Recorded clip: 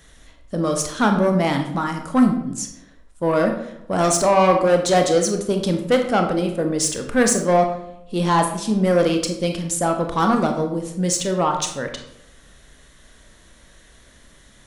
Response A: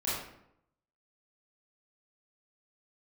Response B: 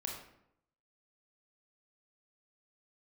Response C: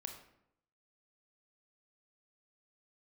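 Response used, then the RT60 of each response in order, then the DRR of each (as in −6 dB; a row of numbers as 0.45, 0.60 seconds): C; 0.75, 0.75, 0.75 seconds; −10.0, −0.5, 4.0 decibels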